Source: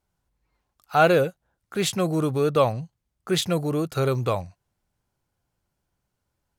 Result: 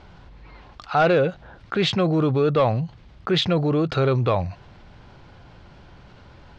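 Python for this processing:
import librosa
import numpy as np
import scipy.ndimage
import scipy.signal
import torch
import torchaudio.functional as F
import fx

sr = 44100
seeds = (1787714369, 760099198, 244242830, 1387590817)

p1 = scipy.signal.sosfilt(scipy.signal.butter(4, 4200.0, 'lowpass', fs=sr, output='sos'), x)
p2 = fx.fold_sine(p1, sr, drive_db=5, ceiling_db=-5.5)
p3 = p1 + F.gain(torch.from_numpy(p2), -6.5).numpy()
p4 = fx.env_flatten(p3, sr, amount_pct=50)
y = F.gain(torch.from_numpy(p4), -7.0).numpy()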